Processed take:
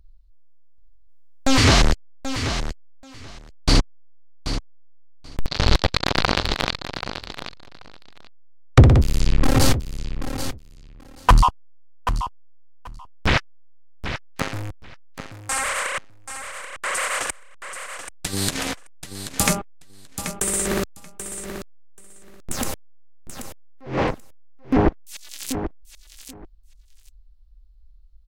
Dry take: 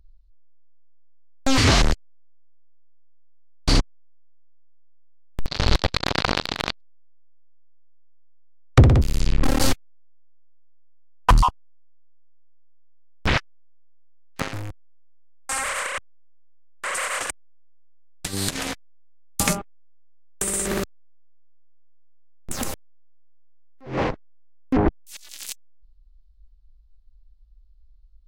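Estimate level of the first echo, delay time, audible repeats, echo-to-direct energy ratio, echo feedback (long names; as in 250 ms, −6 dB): −10.0 dB, 783 ms, 2, −10.0 dB, 15%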